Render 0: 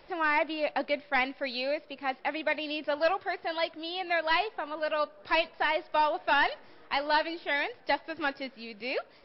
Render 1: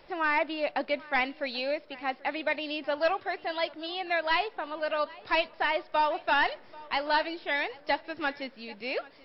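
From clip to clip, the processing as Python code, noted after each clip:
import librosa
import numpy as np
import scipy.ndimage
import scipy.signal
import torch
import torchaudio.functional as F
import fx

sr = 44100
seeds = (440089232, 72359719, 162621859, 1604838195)

y = x + 10.0 ** (-21.5 / 20.0) * np.pad(x, (int(787 * sr / 1000.0), 0))[:len(x)]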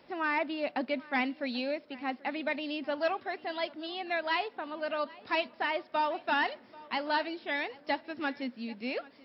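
y = scipy.signal.sosfilt(scipy.signal.butter(2, 78.0, 'highpass', fs=sr, output='sos'), x)
y = fx.peak_eq(y, sr, hz=240.0, db=13.0, octaves=0.49)
y = y * librosa.db_to_amplitude(-4.0)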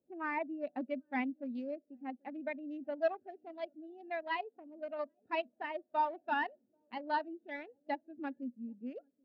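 y = fx.wiener(x, sr, points=41)
y = fx.spectral_expand(y, sr, expansion=1.5)
y = y * librosa.db_to_amplitude(-1.0)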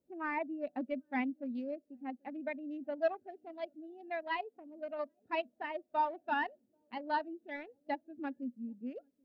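y = fx.low_shelf(x, sr, hz=93.0, db=10.0)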